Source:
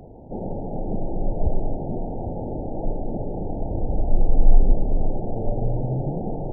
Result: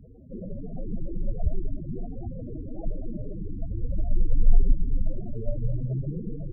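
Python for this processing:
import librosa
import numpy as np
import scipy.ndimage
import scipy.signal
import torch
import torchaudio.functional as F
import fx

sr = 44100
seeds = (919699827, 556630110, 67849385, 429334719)

y = fx.cheby_harmonics(x, sr, harmonics=(2, 4), levels_db=(-43, -21), full_scale_db=-2.5)
y = fx.spec_topn(y, sr, count=8)
y = y * 10.0 ** (-3.0 / 20.0)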